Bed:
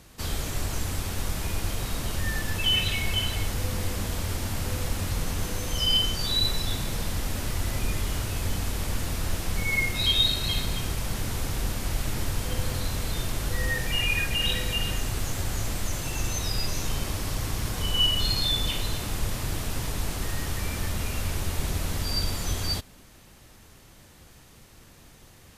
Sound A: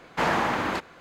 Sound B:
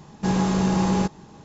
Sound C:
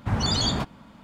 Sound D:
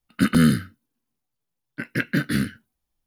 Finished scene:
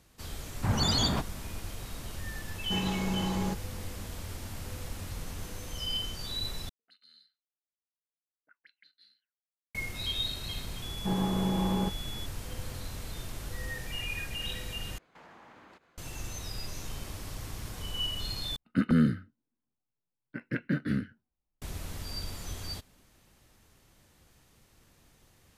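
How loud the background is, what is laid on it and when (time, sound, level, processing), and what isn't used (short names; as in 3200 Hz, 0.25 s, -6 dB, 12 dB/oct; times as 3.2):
bed -10.5 dB
0.57 add C -3 dB
2.47 add B -10.5 dB
6.69 replace with D -15.5 dB + auto-wah 440–4100 Hz, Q 19, up, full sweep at -22 dBFS
10.82 add B -8 dB + pulse-width modulation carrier 3400 Hz
14.98 replace with A -17 dB + compressor 3:1, threshold -38 dBFS
18.56 replace with D -6.5 dB + LPF 1100 Hz 6 dB/oct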